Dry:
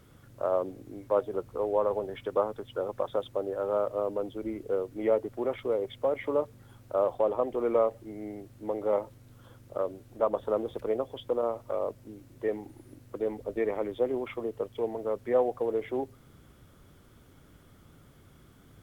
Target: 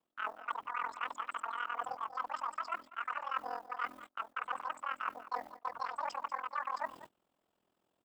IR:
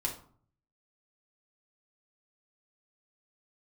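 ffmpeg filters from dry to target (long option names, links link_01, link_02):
-filter_complex "[0:a]aemphasis=mode=production:type=bsi,asetrate=103194,aresample=44100,highshelf=frequency=2600:gain=-10.5,bandreject=frequency=60:width_type=h:width=6,bandreject=frequency=120:width_type=h:width=6,areverse,acompressor=threshold=-41dB:ratio=10,areverse,aeval=exprs='val(0)*sin(2*PI*21*n/s)':channel_layout=same,asplit=2[link_01][link_02];[link_02]aecho=0:1:191:0.178[link_03];[link_01][link_03]amix=inputs=2:normalize=0,agate=range=-24dB:threshold=-58dB:ratio=16:detection=peak,volume=9dB"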